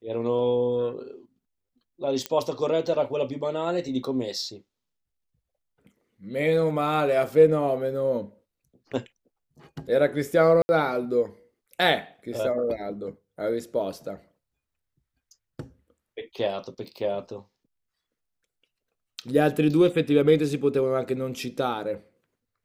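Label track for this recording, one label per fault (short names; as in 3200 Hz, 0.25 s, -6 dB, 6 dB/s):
2.260000	2.260000	pop -12 dBFS
10.620000	10.690000	gap 70 ms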